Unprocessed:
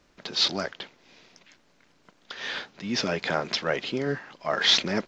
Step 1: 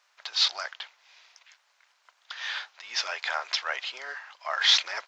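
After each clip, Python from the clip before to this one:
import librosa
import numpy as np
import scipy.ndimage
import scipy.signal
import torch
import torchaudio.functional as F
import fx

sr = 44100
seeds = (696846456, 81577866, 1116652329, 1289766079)

y = scipy.signal.sosfilt(scipy.signal.butter(4, 820.0, 'highpass', fs=sr, output='sos'), x)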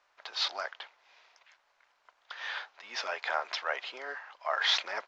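y = fx.tilt_eq(x, sr, slope=-4.0)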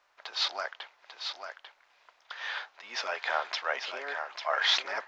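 y = x + 10.0 ** (-7.0 / 20.0) * np.pad(x, (int(844 * sr / 1000.0), 0))[:len(x)]
y = F.gain(torch.from_numpy(y), 1.5).numpy()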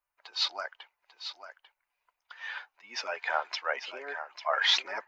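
y = fx.bin_expand(x, sr, power=1.5)
y = F.gain(torch.from_numpy(y), 2.5).numpy()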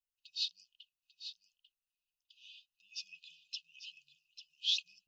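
y = fx.brickwall_bandstop(x, sr, low_hz=180.0, high_hz=2500.0)
y = F.gain(torch.from_numpy(y), -6.5).numpy()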